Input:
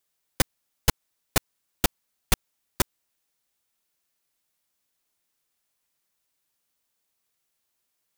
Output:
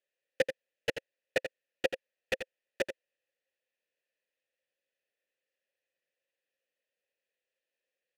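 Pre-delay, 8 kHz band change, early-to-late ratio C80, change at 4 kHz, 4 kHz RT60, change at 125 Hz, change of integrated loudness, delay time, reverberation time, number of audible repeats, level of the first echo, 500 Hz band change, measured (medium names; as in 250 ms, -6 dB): no reverb, -21.0 dB, no reverb, -10.0 dB, no reverb, -21.5 dB, -8.5 dB, 85 ms, no reverb, 1, -9.0 dB, +3.0 dB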